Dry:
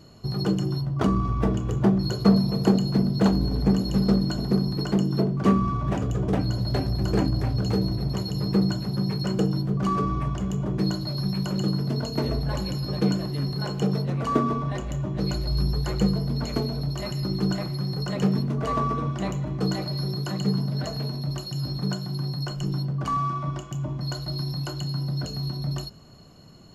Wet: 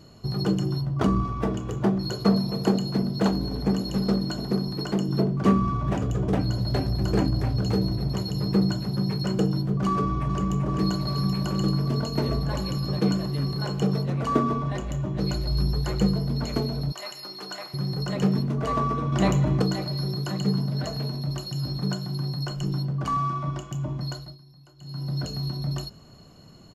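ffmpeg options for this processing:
-filter_complex "[0:a]asettb=1/sr,asplit=3[s0][s1][s2];[s0]atrim=end=1.244[s3];[s1]atrim=start=1.24:end=5.09,asetpts=PTS-STARTPTS,afade=t=in:d=0.004:c=qsin,afade=t=out:st=3.846:d=0.004:c=qsin,lowshelf=f=160:g=-8[s4];[s2]atrim=start=5.086[s5];[s3][s4]acrossfade=d=0.004:c1=hsin:c2=qsin[s6];[s6][s5]acrossfade=d=0.004:c1=qsin:c2=hsin,asplit=2[s7][s8];[s8]afade=t=in:st=9.9:d=0.01,afade=t=out:st=10.68:d=0.01,aecho=0:1:390|780|1170|1560|1950|2340|2730|3120|3510|3900|4290|4680:0.473151|0.378521|0.302817|0.242253|0.193803|0.155042|0.124034|0.099227|0.0793816|0.0635053|0.0508042|0.0406434[s9];[s7][s9]amix=inputs=2:normalize=0,asettb=1/sr,asplit=3[s10][s11][s12];[s10]atrim=end=16.924[s13];[s11]atrim=start=16.92:end=17.74,asetpts=PTS-STARTPTS,afade=t=in:d=0.004:c=qsin,afade=t=out:st=0.816:d=0.004:c=qsin,highpass=730[s14];[s12]atrim=start=17.736[s15];[s13][s14]acrossfade=d=0.004:c1=hsin:c2=qsin[s16];[s16][s15]acrossfade=d=0.004:c1=qsin:c2=hsin,asettb=1/sr,asplit=3[s17][s18][s19];[s17]atrim=end=19.124[s20];[s18]atrim=start=19.12:end=19.62,asetpts=PTS-STARTPTS,afade=t=in:d=0.004:c=qsin,afade=t=out:st=0.496:d=0.004:c=qsin,acontrast=85[s21];[s19]atrim=start=19.616[s22];[s20][s21]acrossfade=d=0.004:c1=hsin:c2=qsin[s23];[s23][s22]acrossfade=d=0.004:c1=qsin:c2=hsin,asplit=3[s24][s25][s26];[s24]atrim=end=24.38,asetpts=PTS-STARTPTS,afade=t=out:st=24.01:d=0.37:silence=0.0749894[s27];[s25]atrim=start=24.38:end=24.78,asetpts=PTS-STARTPTS,volume=0.075[s28];[s26]atrim=start=24.78,asetpts=PTS-STARTPTS,afade=t=in:d=0.37:silence=0.0749894[s29];[s27][s28][s29]concat=n=3:v=0:a=1"

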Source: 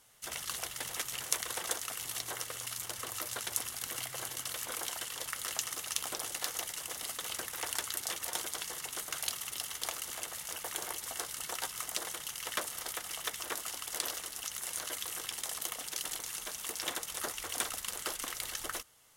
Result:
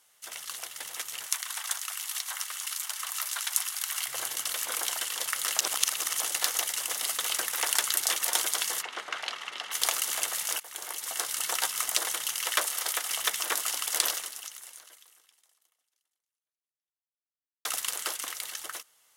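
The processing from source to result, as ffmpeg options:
-filter_complex "[0:a]asettb=1/sr,asplit=3[s0][s1][s2];[s0]atrim=end=1.264[s3];[s1]atrim=start=1.26:end=4.08,asetpts=PTS-STARTPTS,afade=t=in:d=0.004:c=qsin,afade=t=out:st=2.816:d=0.004:c=qsin,highpass=f=850:w=0.5412,highpass=f=850:w=1.3066[s4];[s2]atrim=start=4.076[s5];[s3][s4]acrossfade=d=0.004:c1=hsin:c2=qsin[s6];[s6][s5]acrossfade=d=0.004:c1=qsin:c2=hsin,asplit=3[s7][s8][s9];[s7]afade=t=out:st=8.81:d=0.02[s10];[s8]highpass=210,lowpass=2600,afade=t=in:st=8.81:d=0.02,afade=t=out:st=9.71:d=0.02[s11];[s9]afade=t=in:st=9.71:d=0.02[s12];[s10][s11][s12]amix=inputs=3:normalize=0,asettb=1/sr,asplit=3[s13][s14][s15];[s13]atrim=end=12.474[s16];[s14]atrim=start=12.47:end=13.11,asetpts=PTS-STARTPTS,afade=t=in:d=0.004:c=qsin,afade=t=out:st=0.636:d=0.004:c=qsin,highpass=270[s17];[s15]atrim=start=13.106[s18];[s16][s17]acrossfade=d=0.004:c1=hsin:c2=qsin[s19];[s19][s18]acrossfade=d=0.004:c1=qsin:c2=hsin,asplit=5[s20][s21][s22][s23][s24];[s20]atrim=end=5.602[s25];[s21]atrim=start=5.598:end=6.202,asetpts=PTS-STARTPTS,areverse[s26];[s22]atrim=start=6.198:end=10.6,asetpts=PTS-STARTPTS,afade=t=out:st=4.398:d=0.004:c=hsin:silence=0.1[s27];[s23]atrim=start=10.6:end=17.65,asetpts=PTS-STARTPTS,afade=t=in:d=0.79:silence=0.1,afade=t=out:st=3.47:d=3.58:c=exp[s28];[s24]atrim=start=17.65,asetpts=PTS-STARTPTS,afade=t=in:d=0.004:c=hsin[s29];[s25][s26]acrossfade=d=0.004:c1=hsin:c2=hsin[s30];[s27][s28][s29]concat=n=3:v=0:a=1[s31];[s30][s31]acrossfade=d=0.004:c1=hsin:c2=hsin,highpass=f=770:p=1,dynaudnorm=f=140:g=21:m=3.76"

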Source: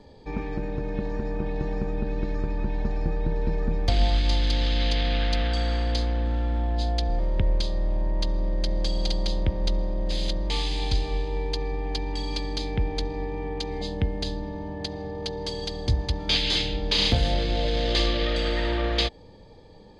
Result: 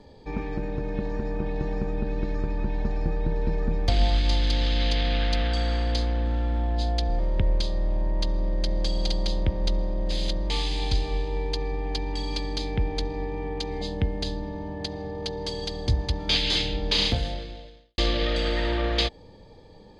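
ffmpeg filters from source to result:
-filter_complex "[0:a]asplit=2[s0][s1];[s0]atrim=end=17.98,asetpts=PTS-STARTPTS,afade=t=out:st=16.97:d=1.01:c=qua[s2];[s1]atrim=start=17.98,asetpts=PTS-STARTPTS,afade=t=in:d=0.004:c=hsin[s3];[s2][s3]concat=n=2:v=0:a=1"

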